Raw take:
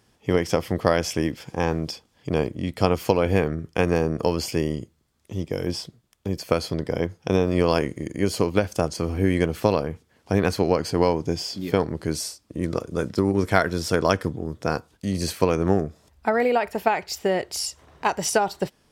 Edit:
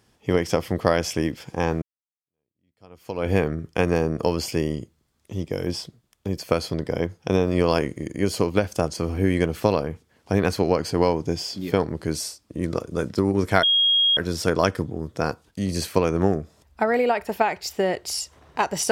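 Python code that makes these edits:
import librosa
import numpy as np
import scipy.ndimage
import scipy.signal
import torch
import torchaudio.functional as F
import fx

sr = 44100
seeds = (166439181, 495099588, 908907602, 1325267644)

y = fx.edit(x, sr, fx.fade_in_span(start_s=1.82, length_s=1.47, curve='exp'),
    fx.insert_tone(at_s=13.63, length_s=0.54, hz=3270.0, db=-15.5), tone=tone)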